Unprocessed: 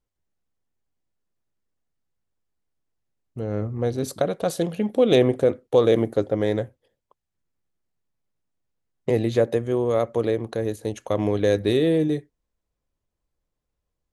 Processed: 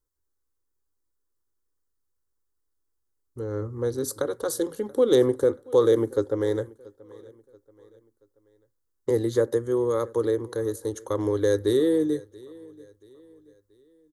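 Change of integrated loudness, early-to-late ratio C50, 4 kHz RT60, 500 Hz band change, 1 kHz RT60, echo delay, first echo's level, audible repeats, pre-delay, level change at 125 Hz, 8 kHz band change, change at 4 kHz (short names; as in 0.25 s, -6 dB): -2.0 dB, none, none, -1.5 dB, none, 0.681 s, -23.0 dB, 2, none, -6.0 dB, +3.5 dB, -5.0 dB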